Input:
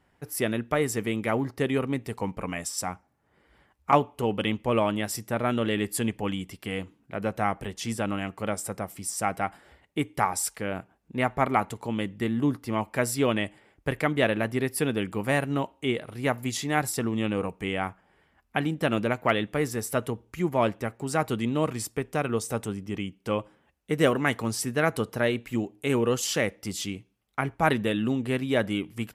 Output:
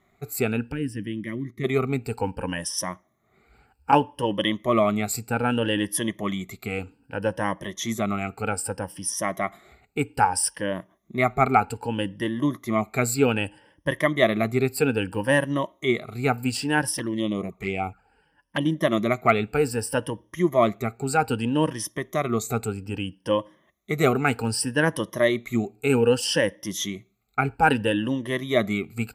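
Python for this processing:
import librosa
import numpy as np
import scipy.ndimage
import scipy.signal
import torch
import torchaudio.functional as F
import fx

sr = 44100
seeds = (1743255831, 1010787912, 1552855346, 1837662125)

y = fx.spec_ripple(x, sr, per_octave=1.2, drift_hz=0.63, depth_db=17)
y = fx.curve_eq(y, sr, hz=(280.0, 750.0, 2200.0, 4100.0), db=(0, -29, -5, -15), at=(0.71, 1.63), fade=0.02)
y = fx.env_flanger(y, sr, rest_ms=8.1, full_db=-22.0, at=(16.97, 18.66))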